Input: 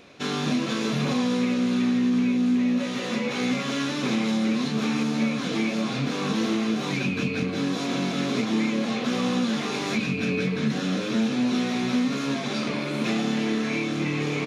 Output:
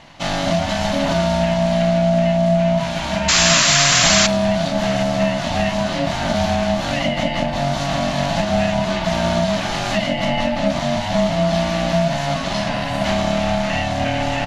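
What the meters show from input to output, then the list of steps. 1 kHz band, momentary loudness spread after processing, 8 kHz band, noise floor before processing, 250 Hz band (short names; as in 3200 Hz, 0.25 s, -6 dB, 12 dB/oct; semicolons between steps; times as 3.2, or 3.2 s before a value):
+12.5 dB, 9 LU, +17.5 dB, -30 dBFS, +1.5 dB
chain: ring modulator 420 Hz; painted sound noise, 3.28–4.27, 990–7600 Hz -24 dBFS; gain +9 dB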